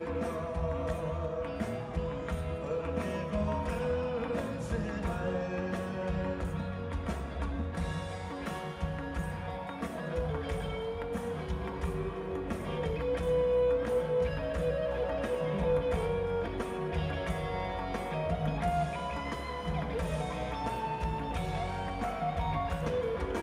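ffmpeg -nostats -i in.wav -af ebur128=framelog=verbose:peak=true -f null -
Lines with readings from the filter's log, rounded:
Integrated loudness:
  I:         -34.0 LUFS
  Threshold: -44.0 LUFS
Loudness range:
  LRA:         5.5 LU
  Threshold: -54.0 LUFS
  LRA low:   -36.6 LUFS
  LRA high:  -31.1 LUFS
True peak:
  Peak:      -18.7 dBFS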